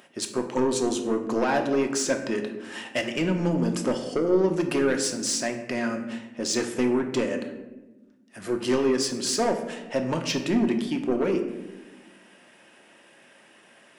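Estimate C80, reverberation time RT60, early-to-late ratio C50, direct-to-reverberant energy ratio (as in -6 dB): 10.5 dB, 1.1 s, 8.5 dB, 4.0 dB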